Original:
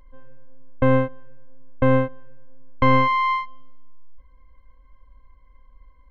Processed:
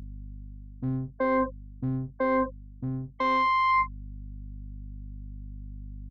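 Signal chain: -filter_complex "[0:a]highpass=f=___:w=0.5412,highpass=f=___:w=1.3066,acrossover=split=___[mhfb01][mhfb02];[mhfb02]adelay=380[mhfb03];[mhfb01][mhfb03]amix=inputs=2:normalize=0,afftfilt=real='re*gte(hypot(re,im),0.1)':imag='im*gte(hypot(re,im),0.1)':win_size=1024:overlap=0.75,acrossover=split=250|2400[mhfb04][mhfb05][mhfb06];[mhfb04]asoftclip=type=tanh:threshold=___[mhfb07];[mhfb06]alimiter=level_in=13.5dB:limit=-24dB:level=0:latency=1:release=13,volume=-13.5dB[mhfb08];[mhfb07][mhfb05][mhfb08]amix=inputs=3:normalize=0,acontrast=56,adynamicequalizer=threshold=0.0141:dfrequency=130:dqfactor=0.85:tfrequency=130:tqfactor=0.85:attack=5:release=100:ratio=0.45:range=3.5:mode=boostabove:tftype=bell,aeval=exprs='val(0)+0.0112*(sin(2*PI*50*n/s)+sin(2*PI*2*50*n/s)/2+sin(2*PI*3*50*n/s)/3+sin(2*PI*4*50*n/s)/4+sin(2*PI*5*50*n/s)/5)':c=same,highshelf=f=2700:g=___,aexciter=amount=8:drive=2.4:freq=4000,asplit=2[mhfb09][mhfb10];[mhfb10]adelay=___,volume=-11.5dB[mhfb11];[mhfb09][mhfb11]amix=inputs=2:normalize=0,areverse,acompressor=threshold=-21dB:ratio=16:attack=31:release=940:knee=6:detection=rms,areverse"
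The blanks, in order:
87, 87, 240, -36dB, 5.5, 43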